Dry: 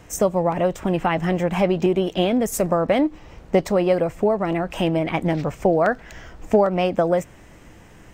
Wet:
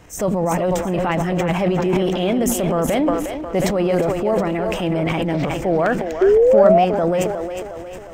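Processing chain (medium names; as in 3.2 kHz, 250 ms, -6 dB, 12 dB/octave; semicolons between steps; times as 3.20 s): two-band feedback delay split 310 Hz, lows 98 ms, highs 360 ms, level -9 dB; transient shaper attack -5 dB, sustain +10 dB; painted sound rise, 6.21–6.85 s, 370–750 Hz -12 dBFS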